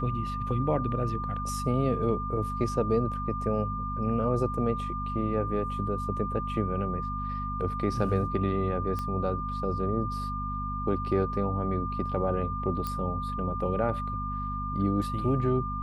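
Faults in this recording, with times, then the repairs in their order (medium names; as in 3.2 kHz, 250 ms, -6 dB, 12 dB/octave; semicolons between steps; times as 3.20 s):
hum 50 Hz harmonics 5 -35 dBFS
whine 1.2 kHz -33 dBFS
8.99 s: pop -21 dBFS
12.87 s: pop -19 dBFS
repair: de-click; de-hum 50 Hz, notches 5; band-stop 1.2 kHz, Q 30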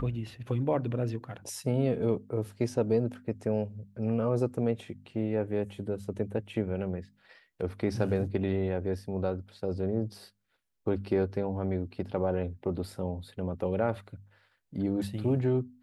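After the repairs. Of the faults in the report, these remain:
nothing left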